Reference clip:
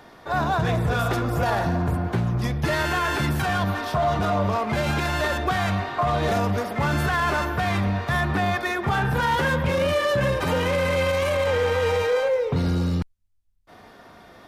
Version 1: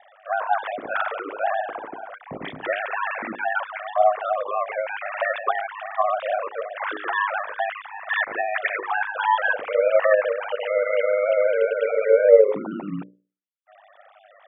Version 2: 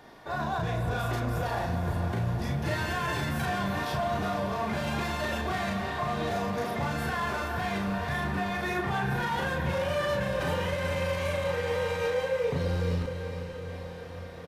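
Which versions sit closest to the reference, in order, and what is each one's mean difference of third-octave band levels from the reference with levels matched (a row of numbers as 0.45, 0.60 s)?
2, 1; 3.5, 19.0 dB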